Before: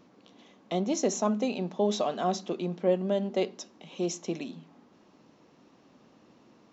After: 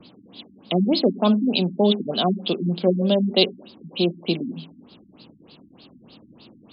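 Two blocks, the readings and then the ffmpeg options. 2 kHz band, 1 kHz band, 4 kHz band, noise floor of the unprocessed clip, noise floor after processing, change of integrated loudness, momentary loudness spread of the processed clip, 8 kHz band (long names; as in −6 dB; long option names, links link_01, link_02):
+9.5 dB, +4.0 dB, +16.5 dB, −61 dBFS, −53 dBFS, +8.5 dB, 7 LU, can't be measured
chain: -filter_complex "[0:a]acrossover=split=130|650|1200[link_01][link_02][link_03][link_04];[link_04]aexciter=amount=9.5:drive=7.9:freq=2900[link_05];[link_01][link_02][link_03][link_05]amix=inputs=4:normalize=0,lowshelf=frequency=300:gain=8.5,bandreject=frequency=135.3:width_type=h:width=4,bandreject=frequency=270.6:width_type=h:width=4,bandreject=frequency=405.9:width_type=h:width=4,bandreject=frequency=541.2:width_type=h:width=4,afftfilt=real='re*lt(b*sr/1024,300*pow(5200/300,0.5+0.5*sin(2*PI*3.3*pts/sr)))':imag='im*lt(b*sr/1024,300*pow(5200/300,0.5+0.5*sin(2*PI*3.3*pts/sr)))':win_size=1024:overlap=0.75,volume=5dB"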